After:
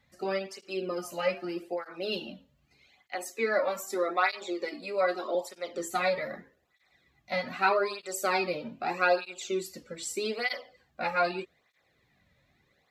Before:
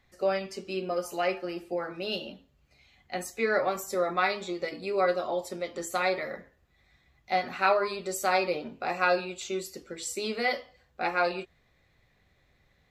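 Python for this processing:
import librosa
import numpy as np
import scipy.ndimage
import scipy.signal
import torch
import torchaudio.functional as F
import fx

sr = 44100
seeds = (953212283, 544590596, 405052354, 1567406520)

y = fx.highpass(x, sr, hz=240.0, slope=24, at=(3.15, 5.35))
y = fx.flanger_cancel(y, sr, hz=0.81, depth_ms=2.9)
y = y * 10.0 ** (2.0 / 20.0)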